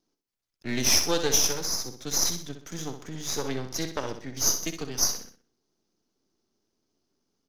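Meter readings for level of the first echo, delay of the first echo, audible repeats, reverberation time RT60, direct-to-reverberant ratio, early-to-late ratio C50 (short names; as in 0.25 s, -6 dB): -8.5 dB, 63 ms, 4, none, none, none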